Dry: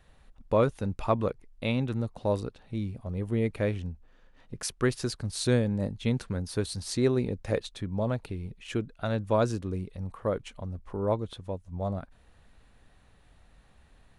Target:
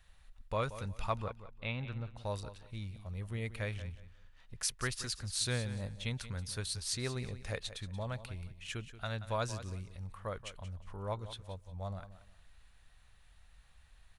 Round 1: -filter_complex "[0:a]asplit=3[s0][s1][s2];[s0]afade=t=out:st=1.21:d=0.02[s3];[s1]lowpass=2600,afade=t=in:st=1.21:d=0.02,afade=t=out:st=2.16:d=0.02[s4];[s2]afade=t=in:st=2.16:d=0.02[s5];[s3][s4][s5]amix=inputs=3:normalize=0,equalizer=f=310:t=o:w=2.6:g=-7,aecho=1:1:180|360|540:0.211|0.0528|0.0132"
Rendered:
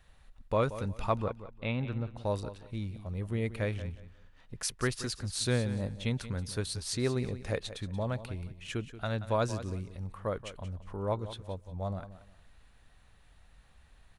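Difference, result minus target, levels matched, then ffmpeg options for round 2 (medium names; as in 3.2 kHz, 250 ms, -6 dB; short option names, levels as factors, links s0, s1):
250 Hz band +4.5 dB
-filter_complex "[0:a]asplit=3[s0][s1][s2];[s0]afade=t=out:st=1.21:d=0.02[s3];[s1]lowpass=2600,afade=t=in:st=1.21:d=0.02,afade=t=out:st=2.16:d=0.02[s4];[s2]afade=t=in:st=2.16:d=0.02[s5];[s3][s4][s5]amix=inputs=3:normalize=0,equalizer=f=310:t=o:w=2.6:g=-18,aecho=1:1:180|360|540:0.211|0.0528|0.0132"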